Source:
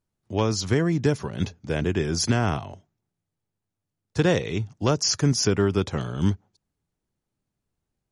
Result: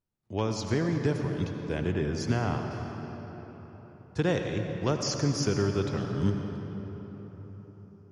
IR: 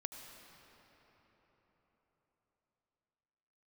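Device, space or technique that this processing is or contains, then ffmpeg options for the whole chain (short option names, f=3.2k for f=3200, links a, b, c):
swimming-pool hall: -filter_complex "[1:a]atrim=start_sample=2205[a];[0:a][a]afir=irnorm=-1:irlink=0,highshelf=f=5.4k:g=-7,asettb=1/sr,asplit=3[b][c][d];[b]atrim=end=1.924[e];[c]atrim=start=1.92:end=2.71,asetpts=PTS-STARTPTS,afade=t=in:d=0.004:c=qsin,afade=t=out:st=0.786:d=0.004:c=qsin,aemphasis=mode=reproduction:type=cd[f];[d]atrim=start=2.706[g];[e][f]acrossfade=d=0.004:c1=hsin:c2=qsin[h];[h][g]acrossfade=d=0.004:c1=qsin:c2=hsin,volume=-2.5dB"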